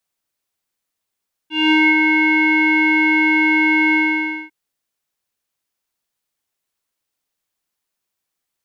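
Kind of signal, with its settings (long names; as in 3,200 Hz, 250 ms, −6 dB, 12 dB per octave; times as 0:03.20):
subtractive voice square D#4 12 dB per octave, low-pass 2,100 Hz, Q 11, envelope 0.5 octaves, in 0.44 s, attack 208 ms, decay 0.22 s, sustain −4 dB, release 0.56 s, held 2.44 s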